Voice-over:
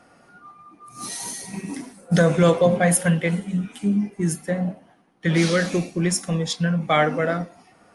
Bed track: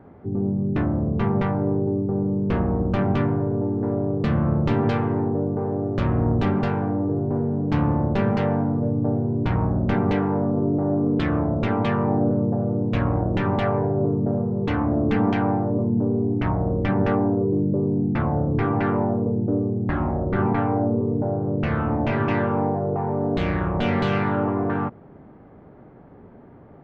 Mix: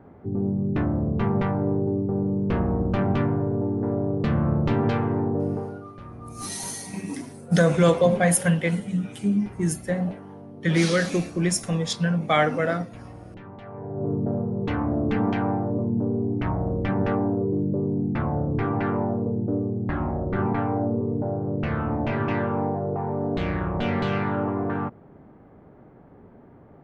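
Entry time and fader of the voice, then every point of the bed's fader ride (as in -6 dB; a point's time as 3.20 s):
5.40 s, -1.5 dB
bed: 5.53 s -1.5 dB
5.93 s -20 dB
13.64 s -20 dB
14.12 s -3 dB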